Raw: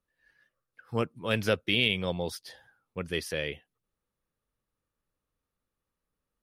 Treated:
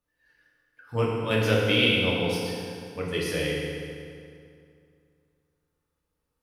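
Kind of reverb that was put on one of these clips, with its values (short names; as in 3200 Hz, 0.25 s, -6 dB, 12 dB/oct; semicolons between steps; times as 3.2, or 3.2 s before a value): FDN reverb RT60 2.4 s, low-frequency decay 1.1×, high-frequency decay 0.75×, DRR -4.5 dB; gain -1 dB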